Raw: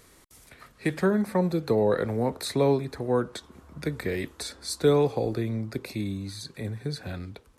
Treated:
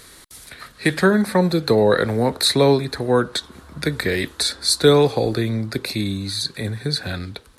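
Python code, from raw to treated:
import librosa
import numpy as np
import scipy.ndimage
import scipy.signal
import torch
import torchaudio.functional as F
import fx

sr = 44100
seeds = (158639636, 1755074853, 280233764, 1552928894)

y = fx.graphic_eq_15(x, sr, hz=(1600, 4000, 10000), db=(6, 10, 7))
y = F.gain(torch.from_numpy(y), 7.0).numpy()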